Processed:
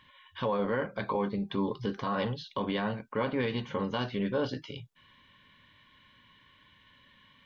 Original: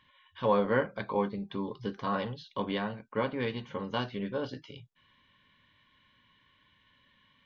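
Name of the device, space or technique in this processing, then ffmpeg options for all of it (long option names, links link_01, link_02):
stacked limiters: -af "alimiter=limit=-20dB:level=0:latency=1:release=323,alimiter=level_in=2.5dB:limit=-24dB:level=0:latency=1:release=29,volume=-2.5dB,volume=5.5dB"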